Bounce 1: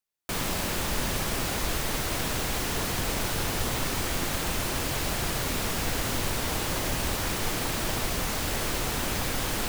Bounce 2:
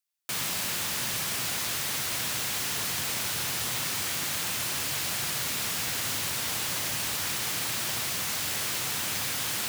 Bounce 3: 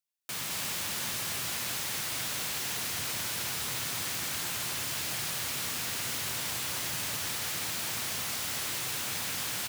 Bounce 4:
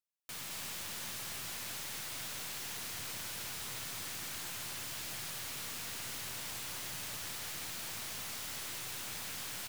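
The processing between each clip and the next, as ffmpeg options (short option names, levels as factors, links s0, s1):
-af "highpass=f=110:w=0.5412,highpass=f=110:w=1.3066,equalizer=f=340:w=0.32:g=-13.5,volume=1.41"
-af "aecho=1:1:213:0.668,volume=0.562"
-af "aeval=exprs='(tanh(28.2*val(0)+0.45)-tanh(0.45))/28.2':c=same,volume=0.531"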